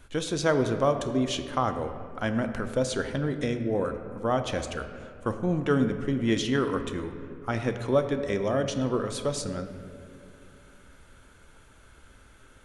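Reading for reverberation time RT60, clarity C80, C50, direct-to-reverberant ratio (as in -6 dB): 2.6 s, 9.5 dB, 9.0 dB, 7.0 dB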